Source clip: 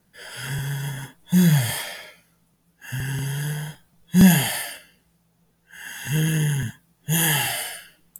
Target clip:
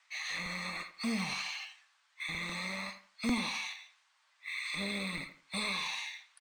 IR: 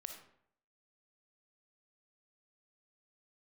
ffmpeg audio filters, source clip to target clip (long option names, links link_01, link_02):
-filter_complex "[0:a]acrossover=split=760[link_01][link_02];[link_01]aeval=exprs='sgn(val(0))*max(abs(val(0))-0.0075,0)':channel_layout=same[link_03];[link_03][link_02]amix=inputs=2:normalize=0,aresample=16000,aresample=44100,asplit=2[link_04][link_05];[link_05]adelay=106,lowpass=frequency=1700:poles=1,volume=-15dB,asplit=2[link_06][link_07];[link_07]adelay=106,lowpass=frequency=1700:poles=1,volume=0.27,asplit=2[link_08][link_09];[link_09]adelay=106,lowpass=frequency=1700:poles=1,volume=0.27[link_10];[link_04][link_06][link_08][link_10]amix=inputs=4:normalize=0,asplit=2[link_11][link_12];[link_12]acompressor=threshold=-26dB:ratio=6,volume=-1dB[link_13];[link_11][link_13]amix=inputs=2:normalize=0,acrossover=split=420 4300:gain=0.251 1 0.224[link_14][link_15][link_16];[link_14][link_15][link_16]amix=inputs=3:normalize=0,acrusher=bits=7:mode=log:mix=0:aa=0.000001,acrossover=split=200[link_17][link_18];[link_18]acompressor=threshold=-39dB:ratio=3[link_19];[link_17][link_19]amix=inputs=2:normalize=0,equalizer=frequency=110:width_type=o:width=1.5:gain=-13.5,asetrate=56448,aresample=44100,volume=1dB"